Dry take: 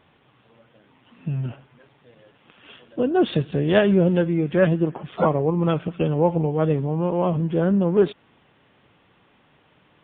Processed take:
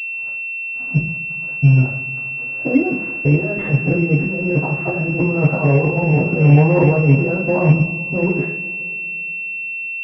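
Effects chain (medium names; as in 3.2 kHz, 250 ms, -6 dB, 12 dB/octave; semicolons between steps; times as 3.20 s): slices played last to first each 325 ms, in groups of 2; compressor with a negative ratio -23 dBFS, ratio -0.5; small samples zeroed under -44 dBFS; two-slope reverb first 0.54 s, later 2.9 s, from -20 dB, DRR -7 dB; class-D stage that switches slowly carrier 2.7 kHz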